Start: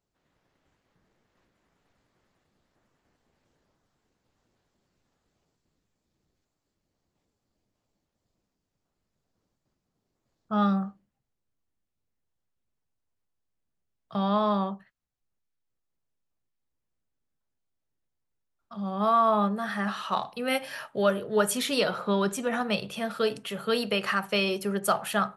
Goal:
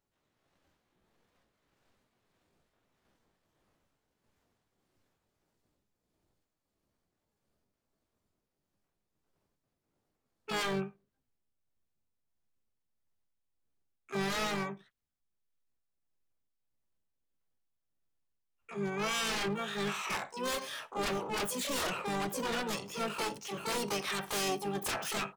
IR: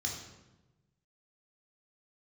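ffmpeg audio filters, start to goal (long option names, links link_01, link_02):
-filter_complex "[0:a]tremolo=f=1.6:d=0.4,aeval=exprs='0.0473*(abs(mod(val(0)/0.0473+3,4)-2)-1)':channel_layout=same,asplit=3[link_01][link_02][link_03];[link_02]asetrate=33038,aresample=44100,atempo=1.33484,volume=-8dB[link_04];[link_03]asetrate=88200,aresample=44100,atempo=0.5,volume=0dB[link_05];[link_01][link_04][link_05]amix=inputs=3:normalize=0,volume=-5dB"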